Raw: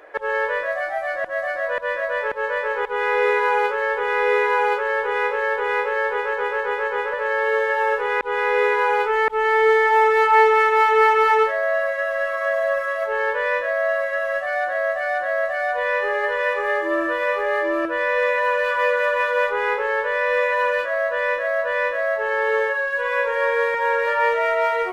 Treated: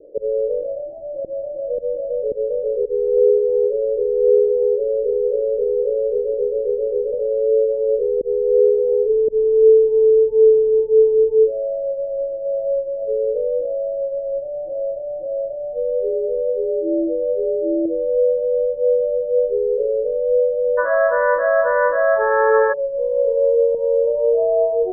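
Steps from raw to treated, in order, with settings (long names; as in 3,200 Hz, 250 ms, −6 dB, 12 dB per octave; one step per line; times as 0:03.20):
Butterworth low-pass 560 Hz 72 dB per octave, from 0:20.77 1,600 Hz, from 0:22.72 680 Hz
level +7 dB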